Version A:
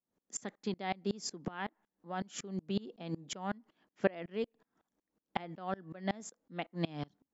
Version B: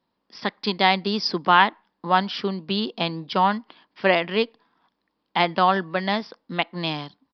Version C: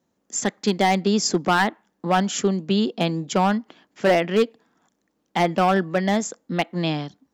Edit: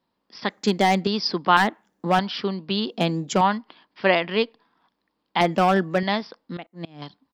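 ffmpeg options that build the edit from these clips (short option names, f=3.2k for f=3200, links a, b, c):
-filter_complex "[2:a]asplit=4[a][b][c][d];[1:a]asplit=6[e][f][g][h][i][j];[e]atrim=end=0.502[k];[a]atrim=start=0.498:end=1.072[l];[f]atrim=start=1.068:end=1.572[m];[b]atrim=start=1.568:end=2.192[n];[g]atrim=start=2.188:end=2.912[o];[c]atrim=start=2.908:end=3.412[p];[h]atrim=start=3.408:end=5.412[q];[d]atrim=start=5.408:end=6.032[r];[i]atrim=start=6.028:end=6.572[s];[0:a]atrim=start=6.568:end=7.022[t];[j]atrim=start=7.018[u];[k][l]acrossfade=d=0.004:c1=hsin:c2=hsin[v];[v][m]acrossfade=d=0.004:c1=hsin:c2=hsin[w];[w][n]acrossfade=d=0.004:c1=hsin:c2=hsin[x];[x][o]acrossfade=d=0.004:c1=hsin:c2=hsin[y];[y][p]acrossfade=d=0.004:c1=hsin:c2=hsin[z];[z][q]acrossfade=d=0.004:c1=hsin:c2=hsin[aa];[aa][r]acrossfade=d=0.004:c1=hsin:c2=hsin[ab];[ab][s]acrossfade=d=0.004:c1=hsin:c2=hsin[ac];[ac][t]acrossfade=d=0.004:c1=hsin:c2=hsin[ad];[ad][u]acrossfade=d=0.004:c1=hsin:c2=hsin"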